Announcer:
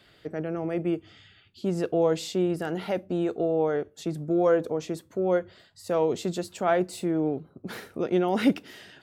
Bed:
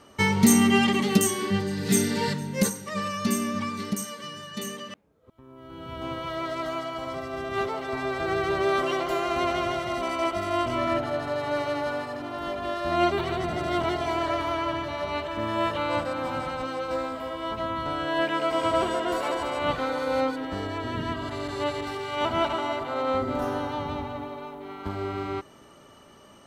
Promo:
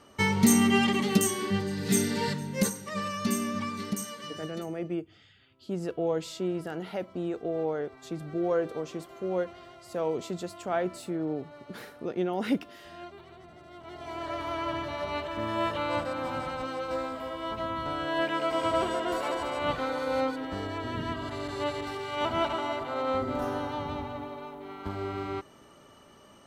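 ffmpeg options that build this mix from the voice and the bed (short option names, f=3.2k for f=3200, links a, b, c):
-filter_complex "[0:a]adelay=4050,volume=-5.5dB[a];[1:a]volume=16dB,afade=t=out:st=4.45:d=0.21:silence=0.112202,afade=t=in:st=13.82:d=0.95:silence=0.112202[b];[a][b]amix=inputs=2:normalize=0"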